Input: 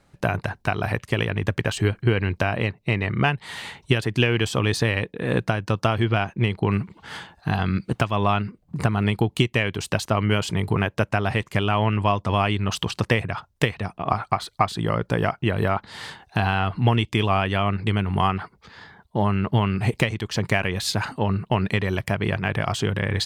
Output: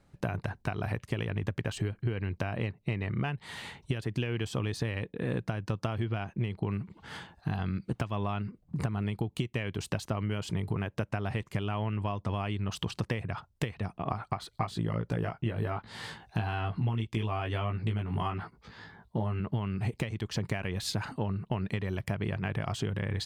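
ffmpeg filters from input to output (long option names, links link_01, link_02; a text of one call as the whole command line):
ffmpeg -i in.wav -filter_complex "[0:a]asettb=1/sr,asplit=3[link_01][link_02][link_03];[link_01]atrim=end=14.524[link_04];[link_02]atrim=start=14.52:end=19.4,asetpts=PTS-STARTPTS,afade=type=in:duration=0.004:curve=qsin,afade=type=out:start_time=4.876:duration=0.004:curve=qsin,asplit=2[link_05][link_06];[link_06]adelay=18,volume=-2.5dB[link_07];[link_05][link_07]amix=inputs=2:normalize=0,atrim=end_sample=215208[link_08];[link_03]atrim=start=19.396[link_09];[link_04][link_08]acrossfade=duration=0.004:curve1=hsin:curve2=qsin[link_10];[link_10][link_09]acrossfade=duration=0.004:curve1=qsin:curve2=hsin,lowshelf=frequency=420:gain=6,acompressor=threshold=-20dB:ratio=6,volume=-8dB" out.wav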